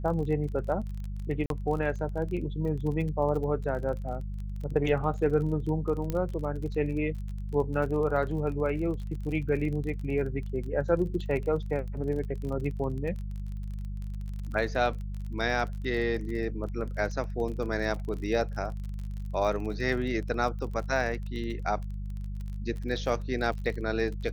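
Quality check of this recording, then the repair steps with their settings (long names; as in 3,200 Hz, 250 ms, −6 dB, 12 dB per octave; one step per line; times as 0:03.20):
surface crackle 31 per second −36 dBFS
mains hum 50 Hz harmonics 4 −35 dBFS
0:01.46–0:01.50: drop-out 42 ms
0:06.10: click −18 dBFS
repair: click removal
hum removal 50 Hz, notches 4
repair the gap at 0:01.46, 42 ms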